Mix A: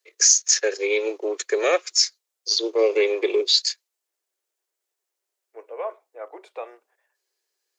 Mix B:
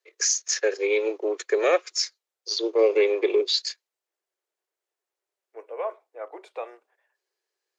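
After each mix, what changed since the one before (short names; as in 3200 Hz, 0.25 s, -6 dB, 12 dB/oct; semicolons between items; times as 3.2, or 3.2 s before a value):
first voice: add high shelf 4000 Hz -11 dB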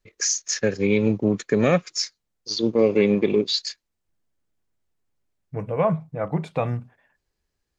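second voice +8.5 dB; master: remove steep high-pass 350 Hz 72 dB/oct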